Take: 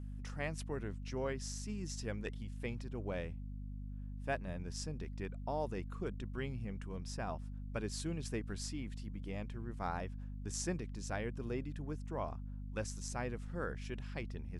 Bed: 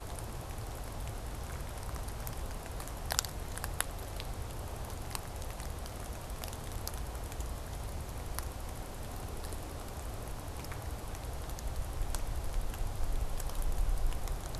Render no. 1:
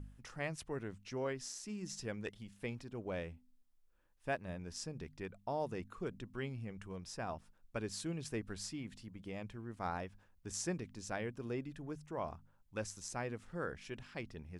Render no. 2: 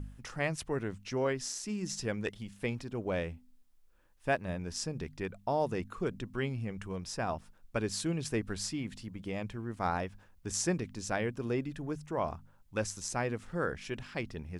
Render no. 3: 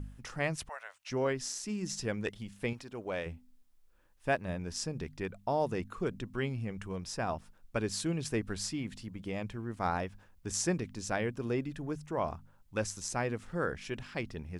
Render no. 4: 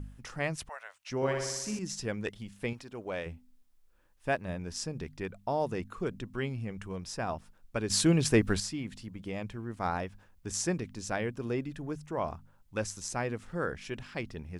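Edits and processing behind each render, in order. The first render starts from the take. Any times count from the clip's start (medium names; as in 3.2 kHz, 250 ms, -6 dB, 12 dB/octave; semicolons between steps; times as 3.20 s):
de-hum 50 Hz, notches 5
trim +7.5 dB
0.69–1.10 s: elliptic high-pass 590 Hz; 2.73–3.26 s: bass shelf 310 Hz -10.5 dB
1.16–1.79 s: flutter echo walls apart 10.4 m, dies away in 1 s; 7.90–8.60 s: gain +9 dB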